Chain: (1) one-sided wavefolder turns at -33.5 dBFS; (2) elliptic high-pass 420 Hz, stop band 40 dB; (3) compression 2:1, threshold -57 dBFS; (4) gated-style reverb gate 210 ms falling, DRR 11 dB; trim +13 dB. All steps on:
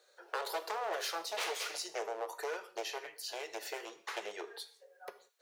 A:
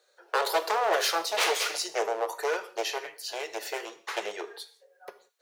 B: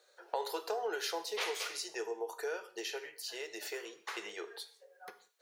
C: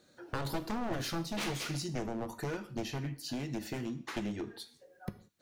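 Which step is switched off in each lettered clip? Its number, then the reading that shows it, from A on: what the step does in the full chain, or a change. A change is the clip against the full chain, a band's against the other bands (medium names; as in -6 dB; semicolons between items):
3, mean gain reduction 7.5 dB; 1, 250 Hz band +4.5 dB; 2, 250 Hz band +20.5 dB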